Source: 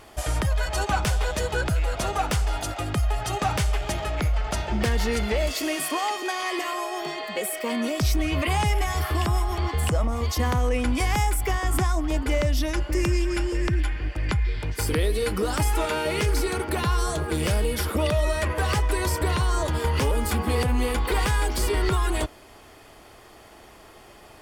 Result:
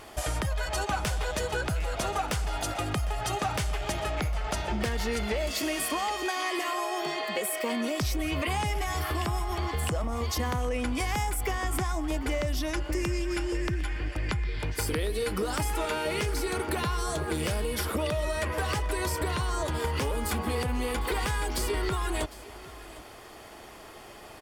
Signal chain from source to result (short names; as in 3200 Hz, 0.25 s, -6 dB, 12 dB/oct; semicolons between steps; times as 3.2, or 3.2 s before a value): low shelf 150 Hz -4 dB; compressor 3:1, threshold -30 dBFS, peak gain reduction 8 dB; on a send: echo 0.755 s -18 dB; on the sum: gain +2 dB